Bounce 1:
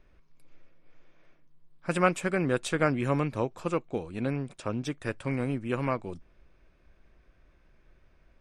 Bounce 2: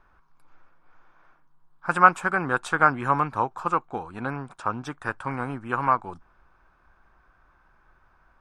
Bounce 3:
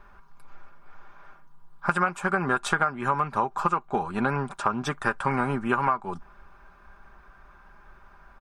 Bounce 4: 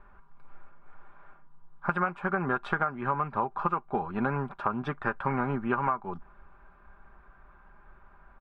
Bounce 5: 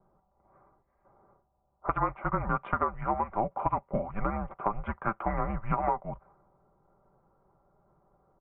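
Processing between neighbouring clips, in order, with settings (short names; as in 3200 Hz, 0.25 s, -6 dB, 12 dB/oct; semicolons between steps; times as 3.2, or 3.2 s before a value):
band shelf 1100 Hz +15.5 dB 1.3 oct; gain -2.5 dB
comb 5 ms, depth 55%; compressor 16:1, threshold -27 dBFS, peak gain reduction 18 dB; gain +7 dB
air absorption 410 m; gain -2 dB
low-pass opened by the level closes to 510 Hz, open at -25.5 dBFS; spectral gain 0.82–1.05, 240–1800 Hz -12 dB; mistuned SSB -220 Hz 190–2800 Hz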